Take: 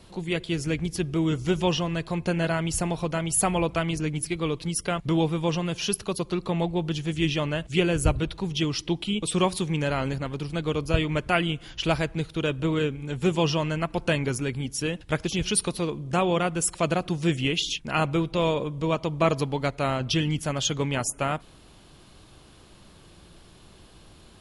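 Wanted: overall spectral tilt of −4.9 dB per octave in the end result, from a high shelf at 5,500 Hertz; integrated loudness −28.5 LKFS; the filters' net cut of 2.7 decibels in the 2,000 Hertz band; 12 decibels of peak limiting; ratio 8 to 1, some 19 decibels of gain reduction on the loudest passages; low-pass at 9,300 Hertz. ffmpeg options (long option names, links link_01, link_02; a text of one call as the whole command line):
ffmpeg -i in.wav -af "lowpass=9300,equalizer=frequency=2000:width_type=o:gain=-4.5,highshelf=frequency=5500:gain=4.5,acompressor=threshold=-38dB:ratio=8,volume=17.5dB,alimiter=limit=-19dB:level=0:latency=1" out.wav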